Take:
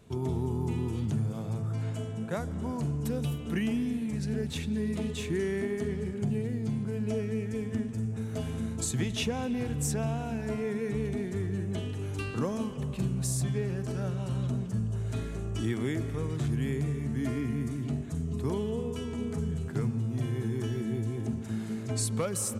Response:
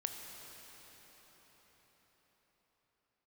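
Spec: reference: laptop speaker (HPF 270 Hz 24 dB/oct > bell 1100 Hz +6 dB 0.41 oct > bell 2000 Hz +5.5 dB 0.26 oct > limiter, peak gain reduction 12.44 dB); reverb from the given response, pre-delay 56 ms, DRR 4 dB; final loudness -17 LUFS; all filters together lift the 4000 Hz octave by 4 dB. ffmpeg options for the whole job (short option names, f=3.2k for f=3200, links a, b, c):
-filter_complex "[0:a]equalizer=f=4k:t=o:g=5,asplit=2[a][b];[1:a]atrim=start_sample=2205,adelay=56[c];[b][c]afir=irnorm=-1:irlink=0,volume=-4.5dB[d];[a][d]amix=inputs=2:normalize=0,highpass=f=270:w=0.5412,highpass=f=270:w=1.3066,equalizer=f=1.1k:t=o:w=0.41:g=6,equalizer=f=2k:t=o:w=0.26:g=5.5,volume=22dB,alimiter=limit=-8.5dB:level=0:latency=1"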